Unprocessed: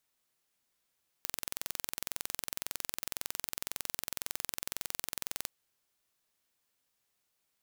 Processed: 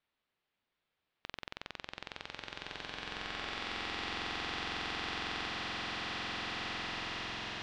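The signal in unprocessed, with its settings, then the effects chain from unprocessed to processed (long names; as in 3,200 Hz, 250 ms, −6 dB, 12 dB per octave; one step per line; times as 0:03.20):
impulse train 21.9 per second, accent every 0, −7.5 dBFS 4.23 s
low-pass filter 3,700 Hz 24 dB per octave
slow-attack reverb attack 2,470 ms, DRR −9.5 dB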